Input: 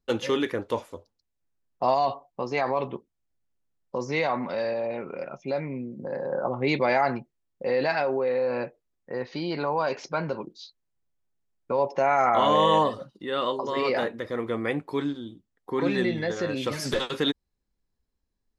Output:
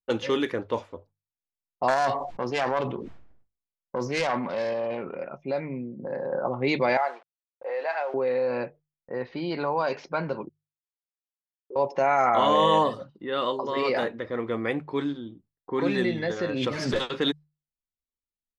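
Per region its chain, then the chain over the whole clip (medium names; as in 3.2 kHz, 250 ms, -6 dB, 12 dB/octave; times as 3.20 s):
1.88–5.15 s: self-modulated delay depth 0.21 ms + decay stretcher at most 56 dB/s
6.97–8.14 s: send-on-delta sampling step -39 dBFS + high-pass 540 Hz 24 dB/octave + tape spacing loss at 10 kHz 24 dB
10.49–11.76 s: Butterworth band-pass 380 Hz, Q 4.2 + upward expansion 2.5:1, over -53 dBFS
16.50–16.96 s: treble shelf 4.1 kHz -9 dB + swell ahead of each attack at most 31 dB/s
whole clip: gate with hold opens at -49 dBFS; hum notches 50/100/150 Hz; level-controlled noise filter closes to 1.1 kHz, open at -20.5 dBFS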